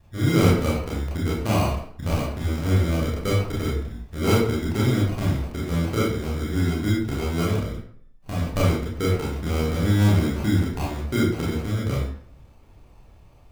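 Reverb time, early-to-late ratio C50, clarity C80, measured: 0.55 s, 1.5 dB, 6.0 dB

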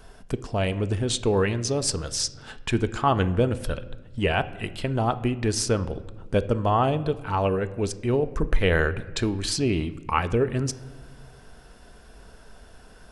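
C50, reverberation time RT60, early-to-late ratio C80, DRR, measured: 16.0 dB, 1.2 s, 18.0 dB, 11.5 dB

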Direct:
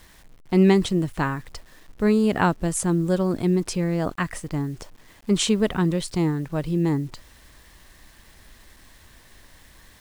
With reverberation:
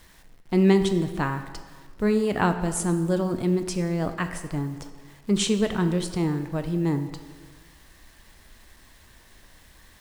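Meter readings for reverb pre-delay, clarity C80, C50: 15 ms, 11.5 dB, 10.0 dB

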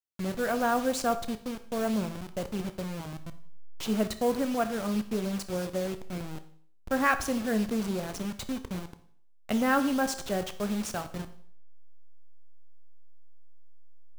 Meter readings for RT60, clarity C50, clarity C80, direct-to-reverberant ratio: 0.55 s, 13.0 dB, 17.0 dB, 10.0 dB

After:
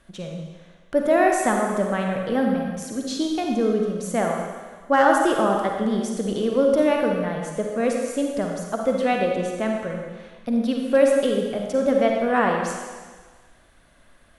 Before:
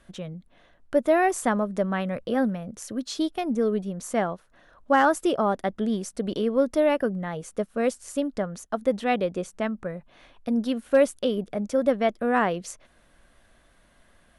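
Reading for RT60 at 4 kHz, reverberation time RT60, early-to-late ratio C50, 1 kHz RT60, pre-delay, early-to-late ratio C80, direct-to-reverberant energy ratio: 1.5 s, 1.5 s, 1.5 dB, 1.5 s, 38 ms, 3.5 dB, 1.0 dB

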